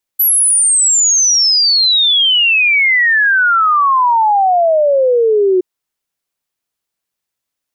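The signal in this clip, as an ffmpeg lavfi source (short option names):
-f lavfi -i "aevalsrc='0.398*clip(min(t,5.42-t)/0.01,0,1)*sin(2*PI*12000*5.42/log(360/12000)*(exp(log(360/12000)*t/5.42)-1))':d=5.42:s=44100"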